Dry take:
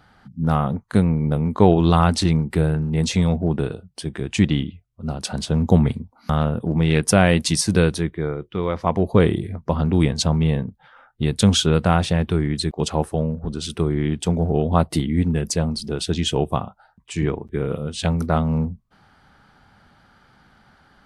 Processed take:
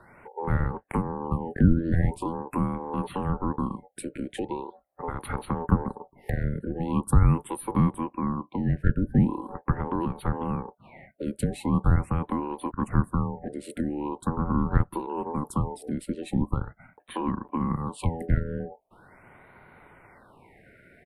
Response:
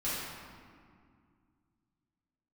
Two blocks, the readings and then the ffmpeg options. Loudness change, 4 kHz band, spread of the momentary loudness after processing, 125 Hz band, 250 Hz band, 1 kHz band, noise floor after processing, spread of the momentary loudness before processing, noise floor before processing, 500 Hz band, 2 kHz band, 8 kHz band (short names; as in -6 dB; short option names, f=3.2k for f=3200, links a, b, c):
-7.5 dB, under -20 dB, 12 LU, -7.0 dB, -7.0 dB, -5.5 dB, -62 dBFS, 10 LU, -57 dBFS, -12.0 dB, -11.0 dB, -16.5 dB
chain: -filter_complex "[0:a]firequalizer=gain_entry='entry(160,0);entry(310,14);entry(5600,-19);entry(9100,7)':delay=0.05:min_phase=1,aeval=exprs='val(0)*sin(2*PI*660*n/s)':c=same,acrossover=split=200[a][b];[b]acompressor=threshold=-28dB:ratio=6[c];[a][c]amix=inputs=2:normalize=0,afftfilt=real='re*(1-between(b*sr/1024,950*pow(6600/950,0.5+0.5*sin(2*PI*0.42*pts/sr))/1.41,950*pow(6600/950,0.5+0.5*sin(2*PI*0.42*pts/sr))*1.41))':imag='im*(1-between(b*sr/1024,950*pow(6600/950,0.5+0.5*sin(2*PI*0.42*pts/sr))/1.41,950*pow(6600/950,0.5+0.5*sin(2*PI*0.42*pts/sr))*1.41))':win_size=1024:overlap=0.75,volume=-3dB"